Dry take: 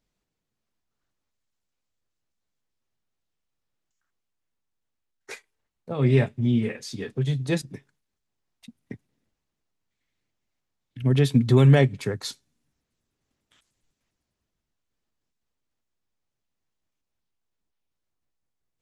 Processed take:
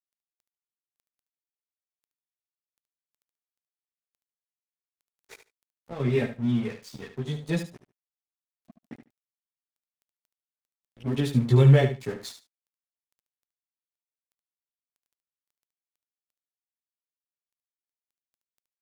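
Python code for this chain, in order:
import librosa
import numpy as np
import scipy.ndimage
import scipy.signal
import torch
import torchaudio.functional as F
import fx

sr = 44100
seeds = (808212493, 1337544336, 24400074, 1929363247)

p1 = fx.dmg_crackle(x, sr, seeds[0], per_s=11.0, level_db=-38.0)
p2 = fx.chorus_voices(p1, sr, voices=4, hz=0.42, base_ms=15, depth_ms=2.5, mix_pct=50)
p3 = np.sign(p2) * np.maximum(np.abs(p2) - 10.0 ** (-42.5 / 20.0), 0.0)
y = p3 + fx.echo_feedback(p3, sr, ms=73, feedback_pct=16, wet_db=-10, dry=0)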